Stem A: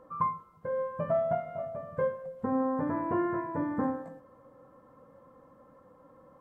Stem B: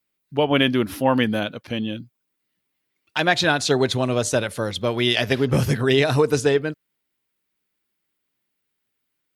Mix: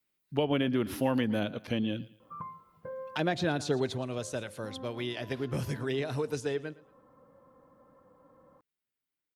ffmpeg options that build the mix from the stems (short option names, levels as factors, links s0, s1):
-filter_complex "[0:a]acompressor=threshold=0.0158:ratio=3,adelay=2200,volume=0.668[s0];[1:a]volume=0.708,afade=t=out:st=3.57:d=0.48:silence=0.298538,asplit=3[s1][s2][s3];[s2]volume=0.0944[s4];[s3]apad=whole_len=379587[s5];[s0][s5]sidechaincompress=threshold=0.01:ratio=8:attack=16:release=390[s6];[s4]aecho=0:1:113|226|339|452|565:1|0.32|0.102|0.0328|0.0105[s7];[s6][s1][s7]amix=inputs=3:normalize=0,acrossover=split=600|1600[s8][s9][s10];[s8]acompressor=threshold=0.0501:ratio=4[s11];[s9]acompressor=threshold=0.00891:ratio=4[s12];[s10]acompressor=threshold=0.01:ratio=4[s13];[s11][s12][s13]amix=inputs=3:normalize=0"